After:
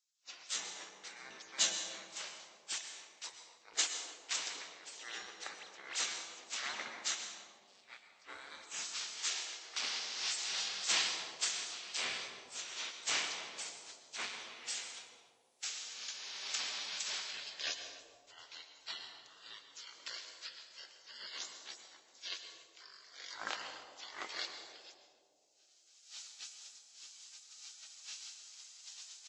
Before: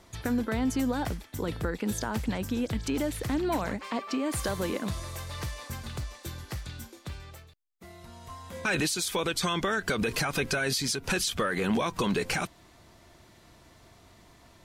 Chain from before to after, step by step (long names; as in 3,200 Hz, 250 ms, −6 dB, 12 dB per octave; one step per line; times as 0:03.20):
camcorder AGC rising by 40 dB per second
gate on every frequency bin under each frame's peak −30 dB weak
high-pass filter 660 Hz 6 dB per octave
downward expander −36 dBFS
high-shelf EQ 3,700 Hz +10.5 dB
convolution reverb RT60 1.3 s, pre-delay 47 ms, DRR 3.5 dB
wrong playback speed 15 ips tape played at 7.5 ips
far-end echo of a speakerphone 290 ms, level −19 dB
level +13 dB